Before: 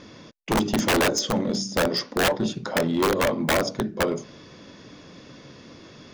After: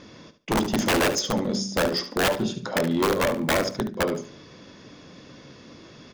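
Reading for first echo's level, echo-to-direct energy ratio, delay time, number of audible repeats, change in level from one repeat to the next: -12.0 dB, -12.0 dB, 72 ms, 2, -13.0 dB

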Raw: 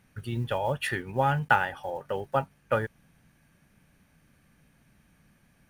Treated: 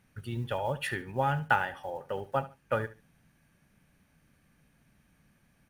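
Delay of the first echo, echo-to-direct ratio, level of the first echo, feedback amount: 71 ms, -16.0 dB, -16.5 dB, 24%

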